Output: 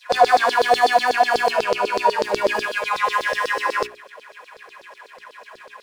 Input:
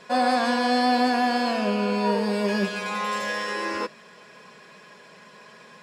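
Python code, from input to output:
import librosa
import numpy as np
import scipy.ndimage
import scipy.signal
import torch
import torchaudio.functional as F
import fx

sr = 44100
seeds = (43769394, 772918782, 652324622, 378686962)

y = scipy.signal.medfilt(x, 9)
y = fx.filter_lfo_highpass(y, sr, shape='saw_down', hz=8.1, low_hz=420.0, high_hz=5100.0, q=4.4)
y = fx.hum_notches(y, sr, base_hz=60, count=7)
y = y * librosa.db_to_amplitude(3.0)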